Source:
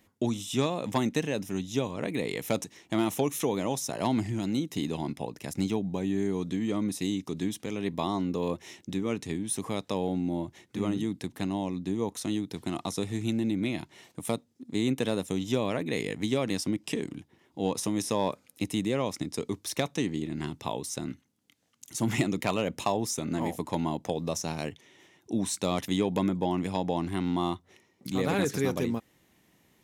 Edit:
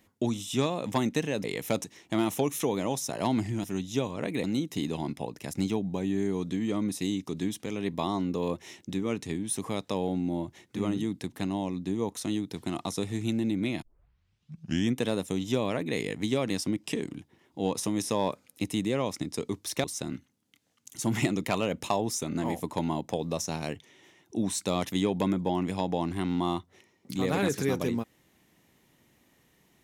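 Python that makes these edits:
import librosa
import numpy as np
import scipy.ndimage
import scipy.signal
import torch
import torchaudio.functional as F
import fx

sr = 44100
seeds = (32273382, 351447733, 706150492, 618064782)

y = fx.edit(x, sr, fx.move(start_s=1.44, length_s=0.8, to_s=4.44),
    fx.tape_start(start_s=13.82, length_s=1.17),
    fx.cut(start_s=19.84, length_s=0.96), tone=tone)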